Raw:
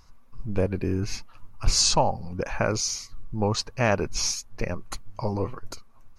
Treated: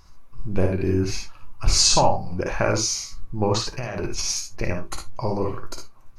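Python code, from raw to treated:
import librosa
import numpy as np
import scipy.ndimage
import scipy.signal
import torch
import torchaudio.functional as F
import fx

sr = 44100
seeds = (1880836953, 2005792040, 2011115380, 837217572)

y = fx.over_compress(x, sr, threshold_db=-30.0, ratio=-1.0, at=(3.54, 4.28), fade=0.02)
y = fx.room_early_taps(y, sr, ms=(56, 74), db=(-5.0, -9.5))
y = fx.rev_gated(y, sr, seeds[0], gate_ms=90, shape='falling', drr_db=8.0)
y = y * librosa.db_to_amplitude(2.0)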